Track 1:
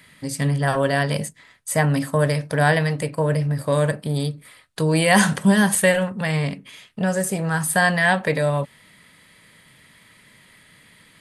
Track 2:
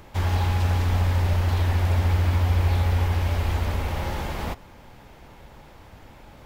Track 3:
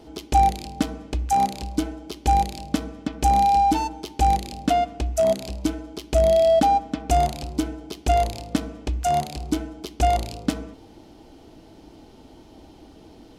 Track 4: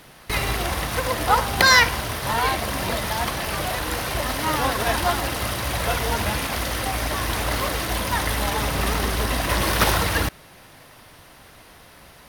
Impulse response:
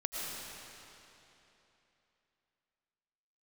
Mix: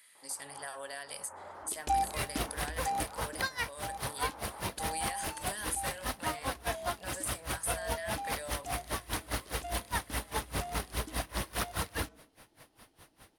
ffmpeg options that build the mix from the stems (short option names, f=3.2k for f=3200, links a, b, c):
-filter_complex "[0:a]bass=f=250:g=1,treble=f=4k:g=8,volume=-14dB,asplit=2[a][b];[1:a]lowpass=f=1.4k:w=0.5412,lowpass=f=1.4k:w=1.3066,adelay=150,volume=-9.5dB[c];[2:a]lowshelf=f=360:g=-9,adelay=1550,volume=-9.5dB,afade=t=out:st=2.66:d=0.62:silence=0.298538[d];[3:a]aeval=exprs='val(0)*pow(10,-28*(0.5-0.5*cos(2*PI*4.9*n/s))/20)':c=same,adelay=1800,volume=-7dB[e];[b]apad=whole_len=291461[f];[c][f]sidechaincompress=threshold=-37dB:ratio=8:attack=10:release=153[g];[a][g]amix=inputs=2:normalize=0,highpass=660,acompressor=threshold=-39dB:ratio=5,volume=0dB[h];[d][e][h]amix=inputs=3:normalize=0,equalizer=f=9.9k:t=o:w=0.4:g=6.5,alimiter=limit=-20.5dB:level=0:latency=1:release=344"